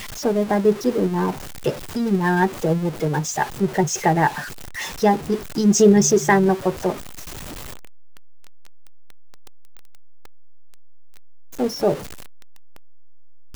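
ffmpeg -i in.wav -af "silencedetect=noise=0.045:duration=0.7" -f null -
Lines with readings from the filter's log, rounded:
silence_start: 6.93
silence_end: 11.59 | silence_duration: 4.67
silence_start: 11.95
silence_end: 13.56 | silence_duration: 1.60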